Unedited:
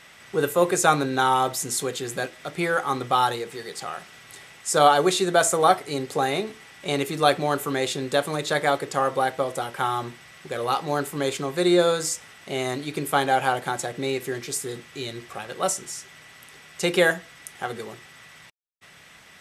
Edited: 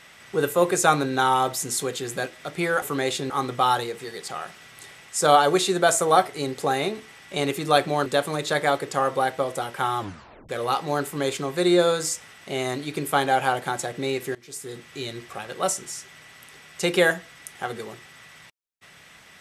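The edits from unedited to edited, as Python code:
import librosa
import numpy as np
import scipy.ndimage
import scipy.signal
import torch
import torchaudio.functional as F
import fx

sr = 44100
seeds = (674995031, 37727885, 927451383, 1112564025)

y = fx.edit(x, sr, fx.move(start_s=7.58, length_s=0.48, to_s=2.82),
    fx.tape_stop(start_s=9.99, length_s=0.5),
    fx.fade_in_from(start_s=14.35, length_s=0.57, floor_db=-22.5), tone=tone)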